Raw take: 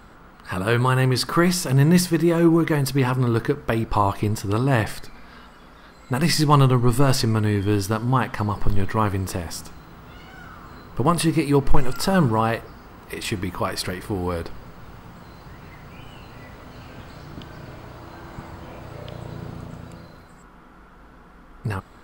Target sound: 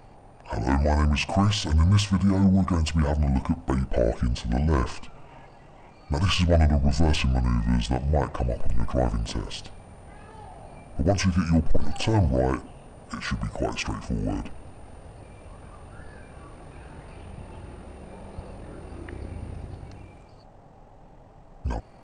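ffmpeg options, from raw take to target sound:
-af "asetrate=25476,aresample=44100,atempo=1.73107,asoftclip=type=tanh:threshold=0.335,volume=0.841"

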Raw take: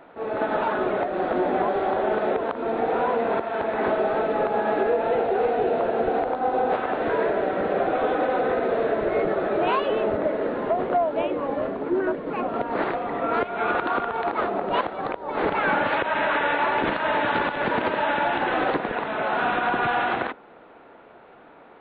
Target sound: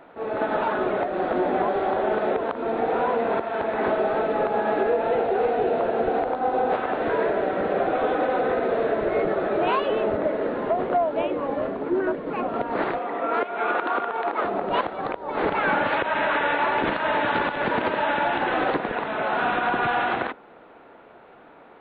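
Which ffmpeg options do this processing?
-filter_complex "[0:a]asettb=1/sr,asplit=3[s0][s1][s2];[s0]atrim=end=12.994[s3];[s1]atrim=start=12.99:end=14.45,asetpts=PTS-STARTPTS,afade=t=in:d=0.004:c=qsin,afade=t=out:st=1.456:d=0.004:c=qsin,highpass=280,lowpass=4100[s4];[s2]atrim=start=14.446[s5];[s3][s4]acrossfade=d=0.004:c1=hsin:c2=qsin[s6];[s6][s5]acrossfade=d=0.004:c1=qsin:c2=hsin"

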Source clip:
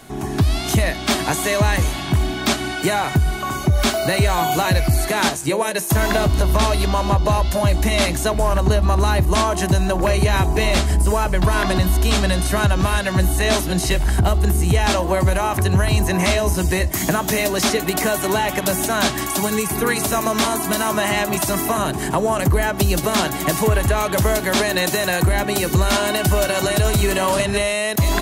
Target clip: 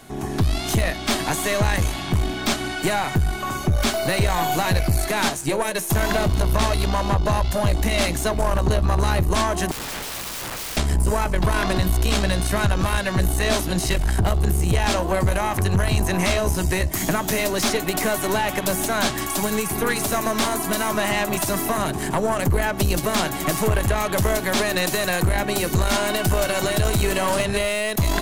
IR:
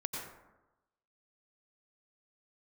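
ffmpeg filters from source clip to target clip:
-filter_complex "[0:a]aeval=exprs='(tanh(4.47*val(0)+0.55)-tanh(0.55))/4.47':c=same,asettb=1/sr,asplit=3[s0][s1][s2];[s0]atrim=end=9.714[s3];[s1]atrim=start=9.71:end=10.77,asetpts=PTS-STARTPTS,afade=t=in:d=0.004:c=qsin,afade=t=out:st=1.056:d=0.004:c=qsin,aeval=exprs='(mod(20*val(0)+1,2)-1)/20':c=same[s4];[s2]atrim=start=10.766[s5];[s3][s4]acrossfade=d=0.004:c1=hsin:c2=qsin[s6];[s6][s5]acrossfade=d=0.004:c1=qsin:c2=hsin"

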